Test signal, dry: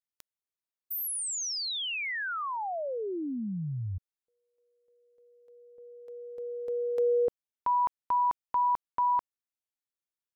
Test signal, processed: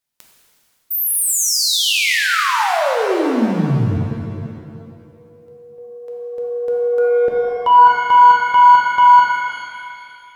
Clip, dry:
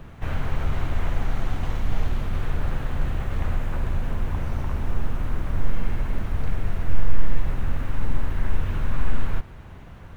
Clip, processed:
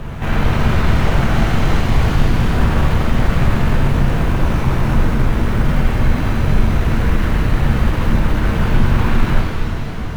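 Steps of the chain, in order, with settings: sine folder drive 19 dB, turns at -3.5 dBFS; shimmer reverb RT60 2.3 s, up +7 st, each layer -8 dB, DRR -1.5 dB; gain -10 dB

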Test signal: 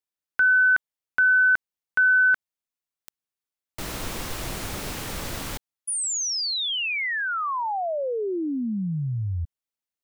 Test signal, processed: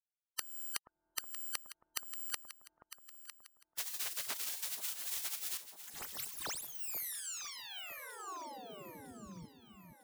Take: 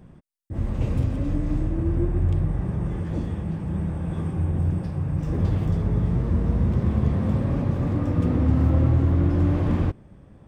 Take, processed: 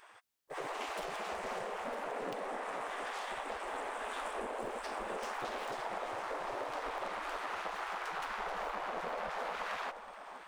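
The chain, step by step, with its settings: self-modulated delay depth 0.72 ms; spectral gate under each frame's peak -25 dB weak; compressor, threshold -46 dBFS; on a send: echo with dull and thin repeats by turns 0.477 s, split 1000 Hz, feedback 63%, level -8 dB; on the sum: gain +9.5 dB

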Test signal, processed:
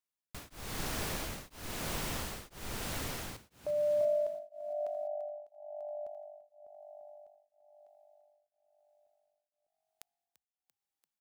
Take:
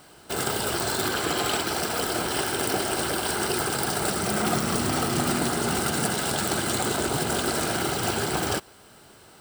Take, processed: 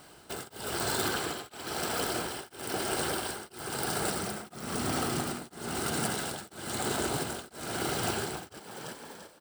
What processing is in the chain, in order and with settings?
vocal rider within 5 dB 2 s; frequency-shifting echo 0.341 s, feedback 50%, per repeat +49 Hz, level -10.5 dB; beating tremolo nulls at 1 Hz; gain -5 dB

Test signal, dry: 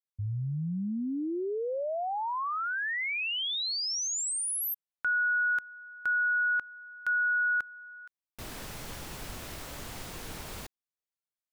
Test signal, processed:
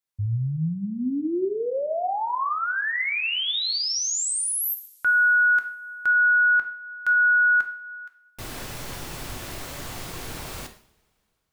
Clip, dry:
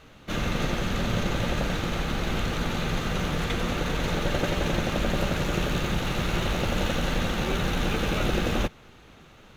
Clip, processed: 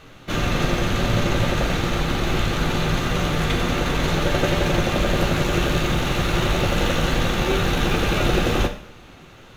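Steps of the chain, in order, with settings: two-slope reverb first 0.52 s, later 2.8 s, from -26 dB, DRR 5.5 dB; gain +5 dB

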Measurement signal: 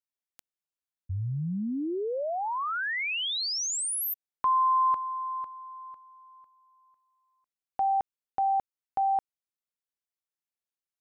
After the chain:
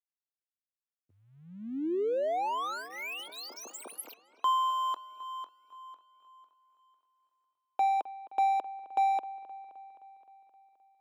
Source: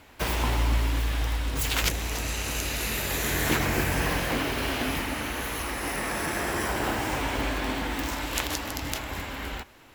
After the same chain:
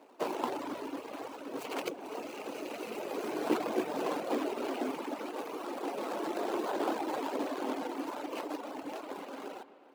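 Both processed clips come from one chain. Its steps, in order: median filter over 25 samples; reverb removal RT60 1 s; HPF 310 Hz 24 dB/oct; low shelf 490 Hz +5 dB; on a send: dark delay 0.261 s, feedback 64%, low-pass 3300 Hz, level -17 dB

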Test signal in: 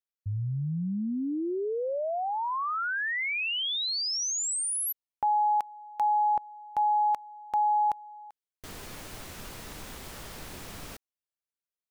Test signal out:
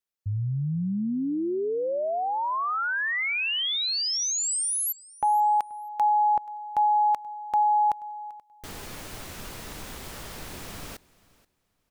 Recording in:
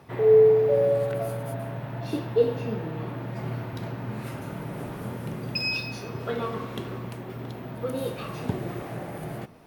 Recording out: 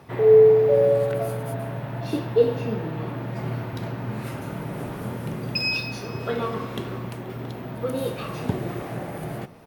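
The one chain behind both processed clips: feedback echo 0.481 s, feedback 21%, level -22.5 dB; gain +3 dB

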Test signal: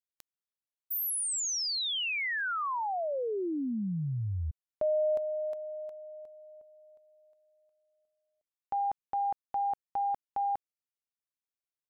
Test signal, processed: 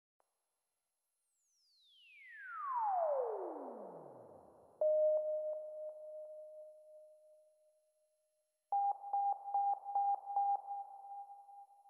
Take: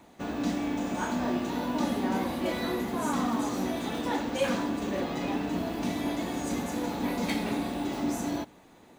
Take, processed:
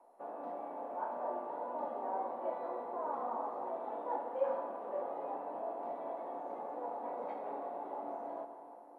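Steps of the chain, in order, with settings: Butterworth band-pass 710 Hz, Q 1.4; plate-style reverb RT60 3.6 s, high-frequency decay 0.7×, DRR 5.5 dB; gain -3.5 dB; MP2 128 kbps 44100 Hz

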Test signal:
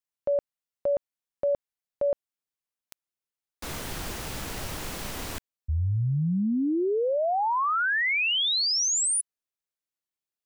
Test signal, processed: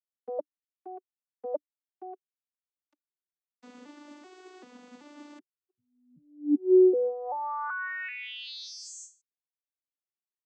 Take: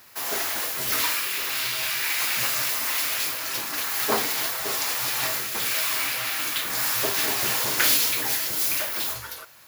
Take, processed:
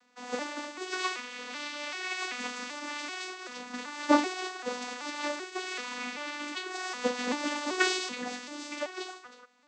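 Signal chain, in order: arpeggiated vocoder minor triad, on B3, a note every 0.385 s; upward expander 1.5:1, over -40 dBFS

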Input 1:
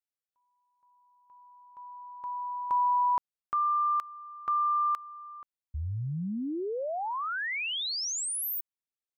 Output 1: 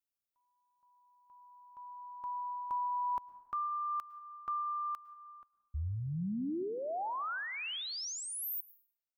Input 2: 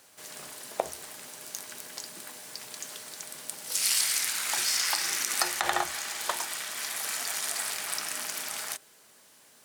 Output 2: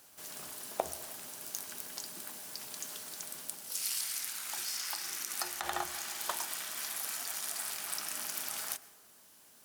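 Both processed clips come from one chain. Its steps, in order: graphic EQ 125/250/500/1000/2000/4000/8000 Hz -6/-3/-8/-4/-8/-5/-6 dB; vocal rider within 4 dB 0.5 s; plate-style reverb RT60 1.2 s, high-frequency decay 0.4×, pre-delay 95 ms, DRR 17.5 dB

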